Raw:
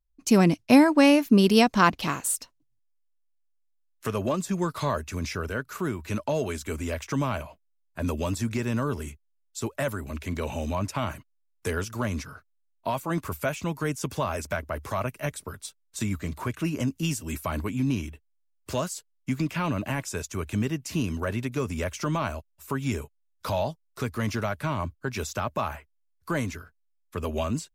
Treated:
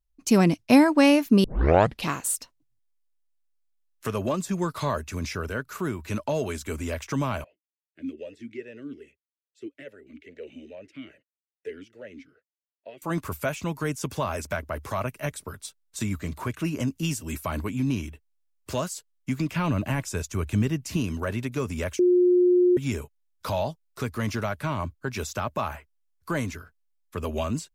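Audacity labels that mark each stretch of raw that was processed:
1.440000	1.440000	tape start 0.62 s
7.440000	13.020000	vowel sweep e-i 2.4 Hz
19.520000	20.970000	low shelf 150 Hz +7.5 dB
21.990000	22.770000	bleep 358 Hz -15.5 dBFS

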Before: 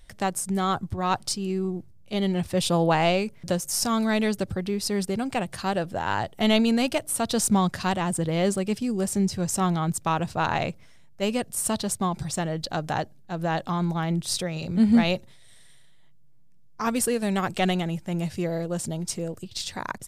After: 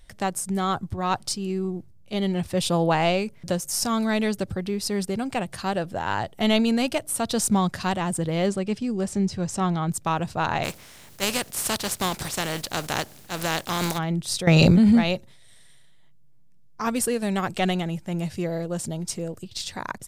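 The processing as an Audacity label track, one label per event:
8.460000	9.890000	air absorption 56 m
10.630000	13.970000	spectral contrast lowered exponent 0.46
14.470000	14.950000	fast leveller amount 100%

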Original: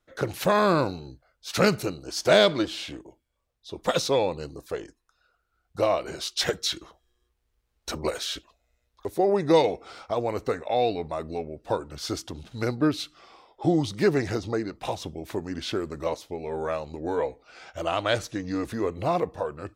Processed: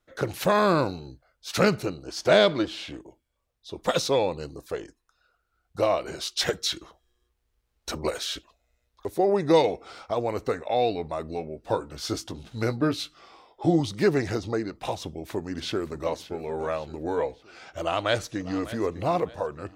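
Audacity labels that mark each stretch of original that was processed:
1.630000	2.940000	high shelf 6000 Hz -8.5 dB
11.360000	13.800000	doubler 18 ms -9 dB
15.000000	16.120000	echo throw 0.57 s, feedback 45%, level -14.5 dB
17.800000	18.650000	echo throw 0.6 s, feedback 35%, level -16 dB

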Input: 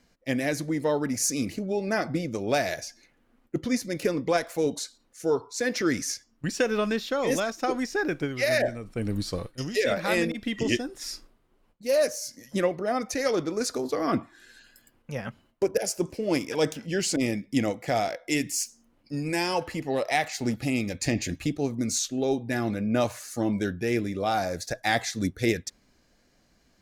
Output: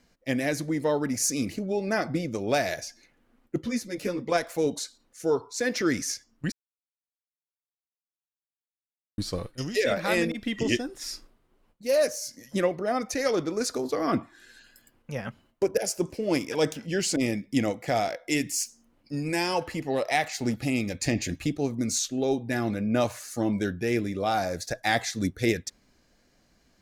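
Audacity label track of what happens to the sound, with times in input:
3.620000	4.320000	ensemble effect
6.520000	9.180000	mute

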